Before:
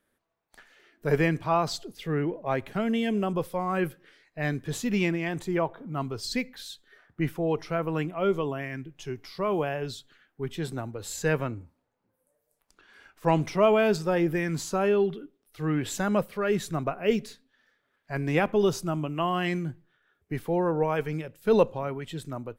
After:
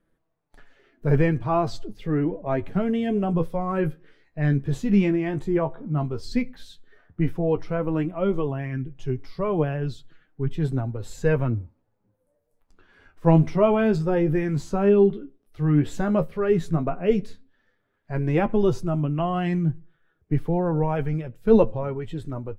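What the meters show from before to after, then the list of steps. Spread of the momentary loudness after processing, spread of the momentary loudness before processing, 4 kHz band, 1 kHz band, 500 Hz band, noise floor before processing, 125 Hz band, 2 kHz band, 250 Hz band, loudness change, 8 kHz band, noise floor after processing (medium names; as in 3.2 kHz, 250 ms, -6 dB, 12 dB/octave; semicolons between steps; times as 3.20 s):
11 LU, 12 LU, -6.0 dB, +0.5 dB, +3.0 dB, -77 dBFS, +8.0 dB, -2.5 dB, +5.5 dB, +4.0 dB, no reading, -72 dBFS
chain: tilt EQ -3 dB/octave; flange 0.1 Hz, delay 5.9 ms, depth 9.2 ms, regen +38%; trim +3.5 dB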